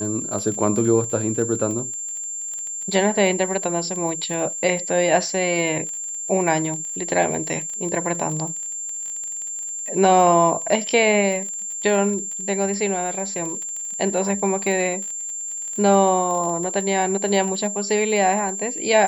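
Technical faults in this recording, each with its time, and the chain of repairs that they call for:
surface crackle 24 per second −27 dBFS
whistle 7,300 Hz −27 dBFS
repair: click removal
notch filter 7,300 Hz, Q 30

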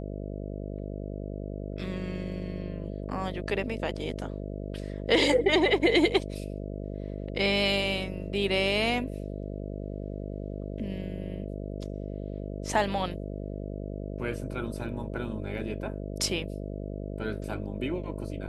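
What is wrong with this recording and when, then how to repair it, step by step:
mains buzz 50 Hz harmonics 13 −36 dBFS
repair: hum removal 50 Hz, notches 13

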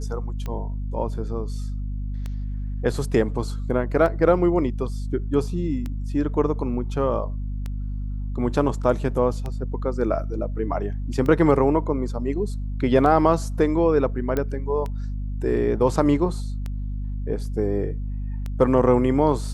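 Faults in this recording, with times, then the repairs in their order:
mains hum 50 Hz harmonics 5 −28 dBFS
scratch tick 33 1/3 rpm −18 dBFS
0:14.37: click −12 dBFS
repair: click removal
hum removal 50 Hz, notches 5

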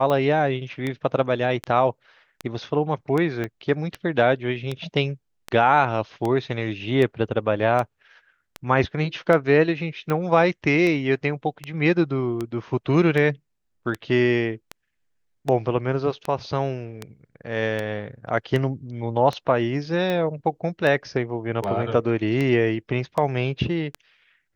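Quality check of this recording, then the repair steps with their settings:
scratch tick 78 rpm −14 dBFS
0:03.44: click −16 dBFS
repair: click removal

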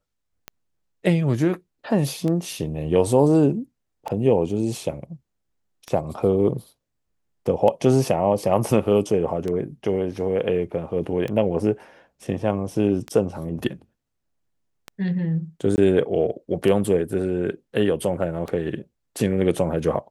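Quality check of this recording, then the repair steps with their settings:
scratch tick 33 1/3 rpm −16 dBFS
0:15.76–0:15.78: drop-out 19 ms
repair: click removal
repair the gap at 0:15.76, 19 ms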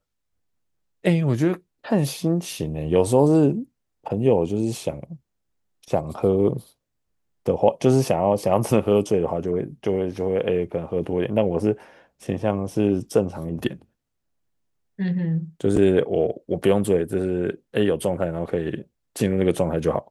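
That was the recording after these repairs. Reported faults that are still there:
none of them is left

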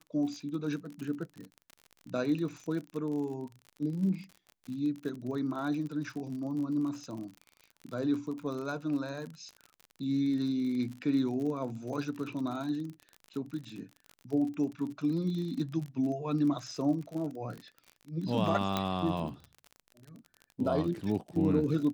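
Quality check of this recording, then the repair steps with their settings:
surface crackle 46 per second −38 dBFS
0:18.77: click −15 dBFS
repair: click removal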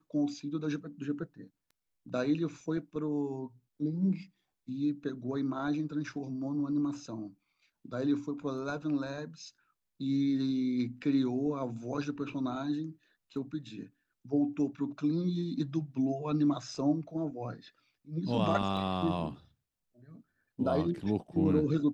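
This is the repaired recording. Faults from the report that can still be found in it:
0:18.77: click

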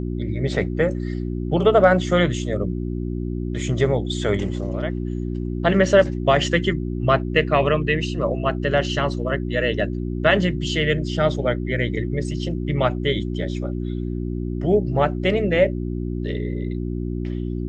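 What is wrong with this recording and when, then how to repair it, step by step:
mains hum 60 Hz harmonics 6 −26 dBFS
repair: hum removal 60 Hz, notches 6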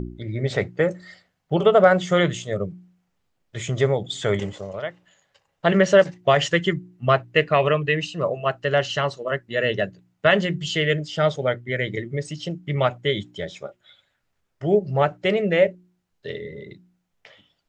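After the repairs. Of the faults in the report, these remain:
none of them is left

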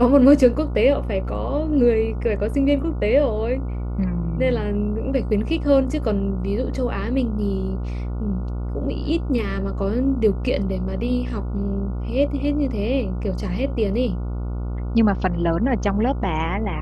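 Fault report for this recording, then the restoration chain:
mains buzz 60 Hz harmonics 24 −26 dBFS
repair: hum removal 60 Hz, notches 24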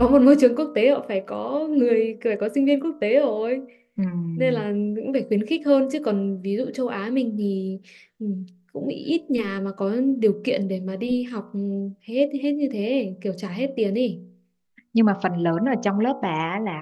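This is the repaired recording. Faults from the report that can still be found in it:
none of them is left

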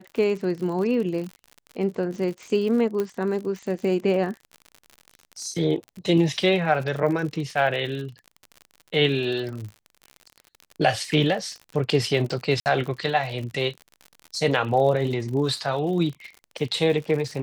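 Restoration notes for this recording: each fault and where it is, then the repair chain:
surface crackle 57 per second −32 dBFS
0:03.00: click −14 dBFS
0:12.60–0:12.66: drop-out 59 ms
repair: click removal
repair the gap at 0:12.60, 59 ms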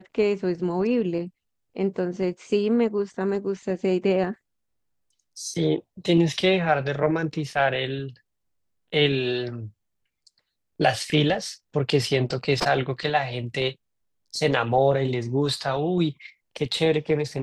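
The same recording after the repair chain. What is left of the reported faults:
none of them is left

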